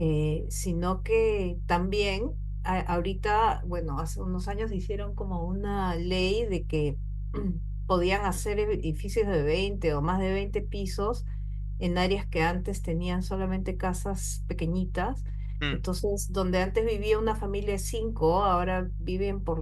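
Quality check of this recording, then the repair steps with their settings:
hum 50 Hz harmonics 3 -33 dBFS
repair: de-hum 50 Hz, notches 3

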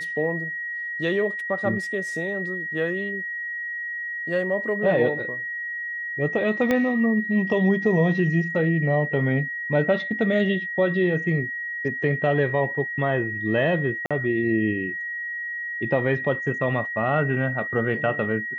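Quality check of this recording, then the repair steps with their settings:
whine 1.9 kHz -28 dBFS
6.71 s: pop -10 dBFS
14.06–14.11 s: dropout 46 ms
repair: de-click; band-stop 1.9 kHz, Q 30; interpolate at 14.06 s, 46 ms

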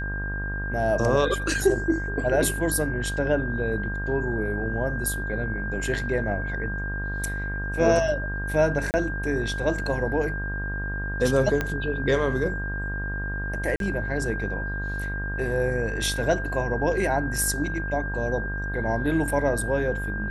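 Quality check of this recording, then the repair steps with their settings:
buzz 50 Hz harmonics 31 -31 dBFS
whine 1.6 kHz -31 dBFS
8.91–8.94 s: dropout 29 ms
11.61 s: pop -12 dBFS
13.76–13.80 s: dropout 42 ms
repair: de-click; de-hum 50 Hz, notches 31; band-stop 1.6 kHz, Q 30; interpolate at 8.91 s, 29 ms; interpolate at 13.76 s, 42 ms

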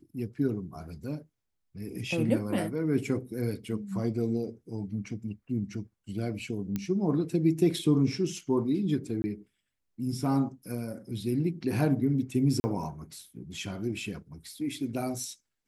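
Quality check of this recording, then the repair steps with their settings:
6.76 s: pop -18 dBFS
9.22–9.24 s: dropout 20 ms
12.60–12.64 s: dropout 40 ms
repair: de-click; interpolate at 9.22 s, 20 ms; interpolate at 12.60 s, 40 ms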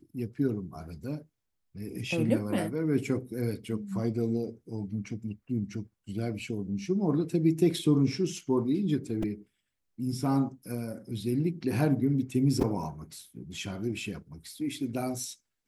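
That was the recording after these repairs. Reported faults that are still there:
nothing left

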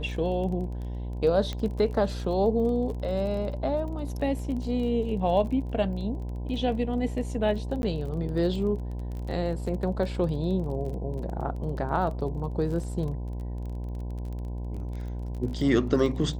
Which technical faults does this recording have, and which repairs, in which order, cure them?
buzz 60 Hz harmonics 17 -33 dBFS
crackle 24 per s -35 dBFS
1.53 s: pop -20 dBFS
7.82–7.83 s: dropout 11 ms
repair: de-click; de-hum 60 Hz, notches 17; interpolate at 7.82 s, 11 ms

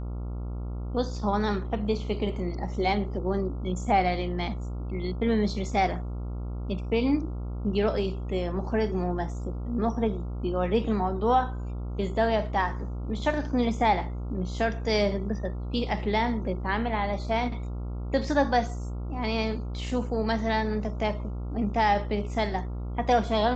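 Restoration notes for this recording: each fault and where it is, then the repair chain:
buzz 60 Hz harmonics 23 -33 dBFS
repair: de-hum 60 Hz, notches 23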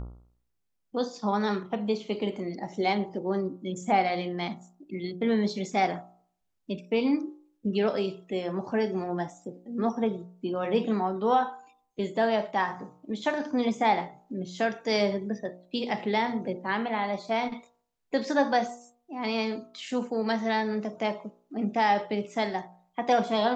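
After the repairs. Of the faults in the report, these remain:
nothing left

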